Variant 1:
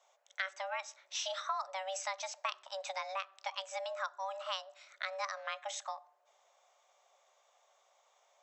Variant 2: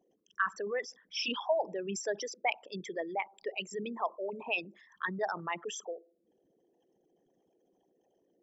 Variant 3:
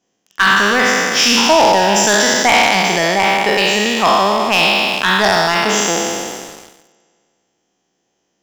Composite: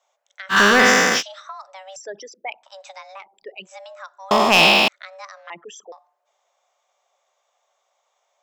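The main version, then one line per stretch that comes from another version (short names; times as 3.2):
1
0.54–1.18 from 3, crossfade 0.10 s
1.96–2.63 from 2
3.21–3.67 from 2, crossfade 0.10 s
4.31–4.88 from 3
5.5–5.92 from 2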